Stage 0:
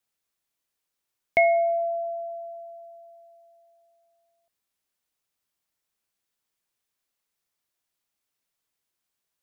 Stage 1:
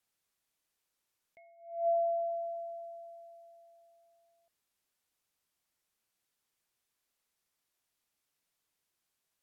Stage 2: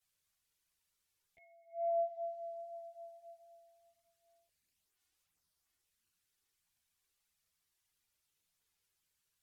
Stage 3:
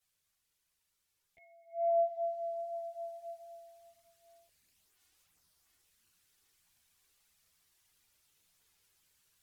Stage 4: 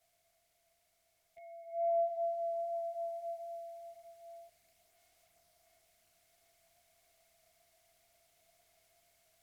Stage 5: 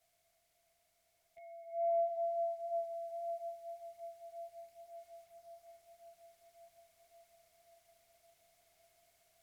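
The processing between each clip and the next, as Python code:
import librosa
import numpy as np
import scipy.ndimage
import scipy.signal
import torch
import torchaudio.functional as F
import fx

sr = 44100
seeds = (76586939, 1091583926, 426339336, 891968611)

y1 = fx.env_lowpass_down(x, sr, base_hz=2400.0, full_db=-25.5)
y1 = fx.attack_slew(y1, sr, db_per_s=110.0)
y2 = fx.peak_eq(y1, sr, hz=560.0, db=-7.0, octaves=2.5)
y2 = fx.chorus_voices(y2, sr, voices=4, hz=0.72, base_ms=12, depth_ms=1.4, mix_pct=65)
y2 = y2 * librosa.db_to_amplitude(4.0)
y3 = fx.rider(y2, sr, range_db=4, speed_s=2.0)
y3 = y3 * librosa.db_to_amplitude(6.0)
y4 = fx.bin_compress(y3, sr, power=0.6)
y4 = y4 * librosa.db_to_amplitude(-3.0)
y5 = fx.echo_banded(y4, sr, ms=552, feedback_pct=70, hz=620.0, wet_db=-8.0)
y5 = y5 * librosa.db_to_amplitude(-1.0)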